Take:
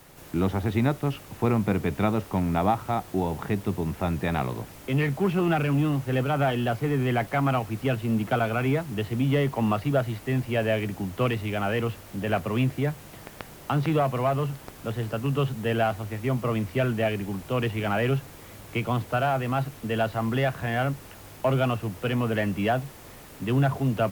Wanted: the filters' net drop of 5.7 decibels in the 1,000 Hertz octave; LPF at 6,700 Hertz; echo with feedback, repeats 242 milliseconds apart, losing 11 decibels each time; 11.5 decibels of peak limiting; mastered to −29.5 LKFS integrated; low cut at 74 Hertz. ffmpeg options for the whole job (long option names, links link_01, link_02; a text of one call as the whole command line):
ffmpeg -i in.wav -af "highpass=74,lowpass=6700,equalizer=frequency=1000:width_type=o:gain=-9,alimiter=limit=-24dB:level=0:latency=1,aecho=1:1:242|484|726:0.282|0.0789|0.0221,volume=3.5dB" out.wav